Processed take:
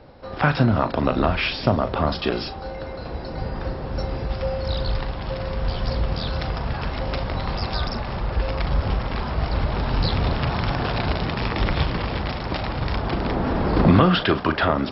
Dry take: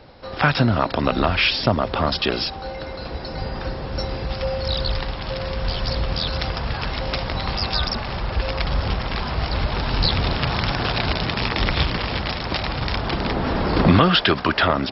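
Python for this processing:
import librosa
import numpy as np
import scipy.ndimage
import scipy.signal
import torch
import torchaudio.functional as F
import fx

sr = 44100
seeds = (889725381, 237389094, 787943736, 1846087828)

y = fx.high_shelf(x, sr, hz=2100.0, db=-10.0)
y = fx.doubler(y, sr, ms=39.0, db=-11.0)
y = y + 10.0 ** (-22.0 / 20.0) * np.pad(y, (int(203 * sr / 1000.0), 0))[:len(y)]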